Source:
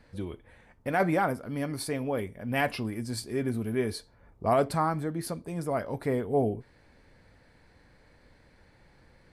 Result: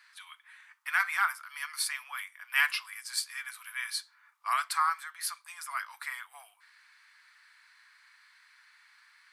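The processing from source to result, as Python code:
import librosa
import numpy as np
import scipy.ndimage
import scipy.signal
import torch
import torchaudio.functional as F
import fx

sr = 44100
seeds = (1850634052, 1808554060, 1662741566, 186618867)

y = scipy.signal.sosfilt(scipy.signal.butter(8, 1100.0, 'highpass', fs=sr, output='sos'), x)
y = y * librosa.db_to_amplitude(6.0)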